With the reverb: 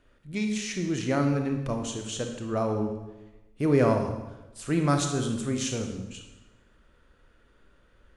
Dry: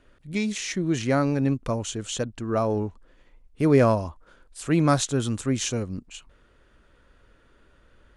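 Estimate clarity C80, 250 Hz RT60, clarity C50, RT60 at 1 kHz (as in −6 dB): 7.5 dB, 1.2 s, 6.0 dB, 0.95 s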